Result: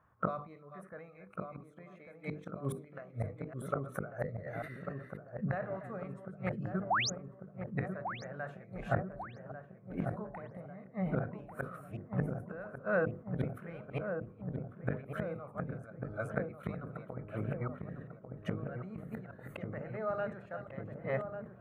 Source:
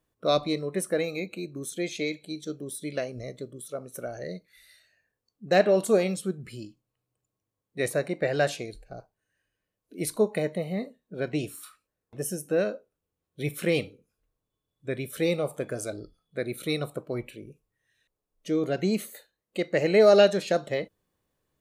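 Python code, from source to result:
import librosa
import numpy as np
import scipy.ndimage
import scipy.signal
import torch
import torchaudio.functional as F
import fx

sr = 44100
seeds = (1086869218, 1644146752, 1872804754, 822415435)

y = fx.reverse_delay(x, sr, ms=272, wet_db=-11.5)
y = fx.gate_flip(y, sr, shuts_db=-27.0, range_db=-27)
y = fx.curve_eq(y, sr, hz=(110.0, 220.0, 340.0, 1300.0, 4800.0), db=(0, -5, -14, 9, -25))
y = fx.spec_paint(y, sr, seeds[0], shape='rise', start_s=6.9, length_s=0.2, low_hz=610.0, high_hz=7100.0, level_db=-39.0)
y = scipy.signal.sosfilt(scipy.signal.butter(2, 66.0, 'highpass', fs=sr, output='sos'), y)
y = fx.peak_eq(y, sr, hz=3900.0, db=-8.0, octaves=2.2)
y = fx.hum_notches(y, sr, base_hz=50, count=10)
y = fx.echo_filtered(y, sr, ms=1145, feedback_pct=77, hz=940.0, wet_db=-5.5)
y = fx.sustainer(y, sr, db_per_s=130.0)
y = y * librosa.db_to_amplitude(12.5)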